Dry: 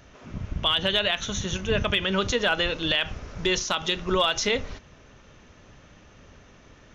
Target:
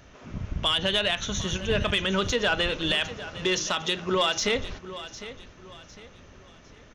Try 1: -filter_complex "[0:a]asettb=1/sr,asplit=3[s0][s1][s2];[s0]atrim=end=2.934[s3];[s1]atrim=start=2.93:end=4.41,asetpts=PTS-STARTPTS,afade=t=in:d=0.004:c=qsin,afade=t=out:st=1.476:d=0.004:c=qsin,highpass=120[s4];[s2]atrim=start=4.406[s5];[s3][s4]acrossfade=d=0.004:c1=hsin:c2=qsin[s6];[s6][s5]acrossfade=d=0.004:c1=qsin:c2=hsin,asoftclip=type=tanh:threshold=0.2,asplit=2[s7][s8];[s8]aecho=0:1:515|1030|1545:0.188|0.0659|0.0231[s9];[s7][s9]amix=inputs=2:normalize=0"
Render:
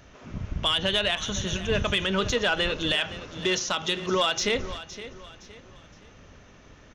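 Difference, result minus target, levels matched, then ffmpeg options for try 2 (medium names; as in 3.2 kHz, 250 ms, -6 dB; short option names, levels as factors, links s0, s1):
echo 240 ms early
-filter_complex "[0:a]asettb=1/sr,asplit=3[s0][s1][s2];[s0]atrim=end=2.934[s3];[s1]atrim=start=2.93:end=4.41,asetpts=PTS-STARTPTS,afade=t=in:d=0.004:c=qsin,afade=t=out:st=1.476:d=0.004:c=qsin,highpass=120[s4];[s2]atrim=start=4.406[s5];[s3][s4]acrossfade=d=0.004:c1=hsin:c2=qsin[s6];[s6][s5]acrossfade=d=0.004:c1=qsin:c2=hsin,asoftclip=type=tanh:threshold=0.2,asplit=2[s7][s8];[s8]aecho=0:1:755|1510|2265:0.188|0.0659|0.0231[s9];[s7][s9]amix=inputs=2:normalize=0"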